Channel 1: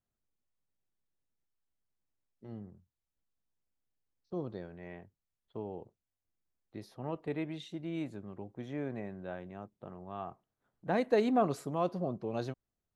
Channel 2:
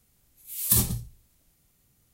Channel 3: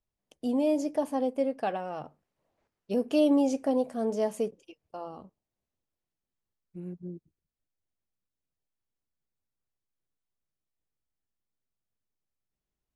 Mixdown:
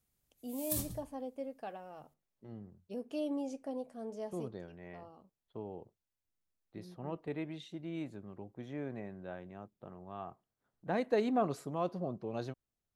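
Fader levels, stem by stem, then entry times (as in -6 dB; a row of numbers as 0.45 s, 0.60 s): -3.0 dB, -15.0 dB, -13.5 dB; 0.00 s, 0.00 s, 0.00 s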